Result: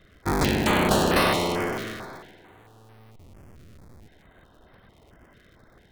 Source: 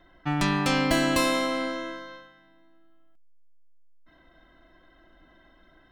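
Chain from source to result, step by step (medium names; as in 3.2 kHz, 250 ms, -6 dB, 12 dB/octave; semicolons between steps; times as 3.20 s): cycle switcher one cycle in 3, inverted; spring tank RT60 2.9 s, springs 51 ms, chirp 55 ms, DRR 15 dB; step-sequenced notch 4.5 Hz 870–7100 Hz; trim +3 dB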